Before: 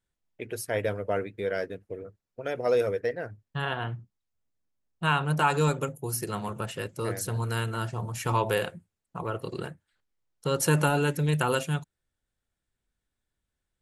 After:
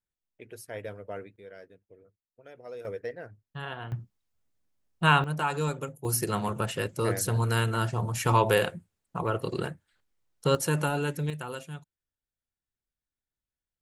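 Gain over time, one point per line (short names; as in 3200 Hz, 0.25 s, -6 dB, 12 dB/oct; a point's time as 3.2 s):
-10 dB
from 1.36 s -17.5 dB
from 2.85 s -7 dB
from 3.92 s +4 dB
from 5.24 s -5 dB
from 6.05 s +3.5 dB
from 10.55 s -4 dB
from 11.3 s -11.5 dB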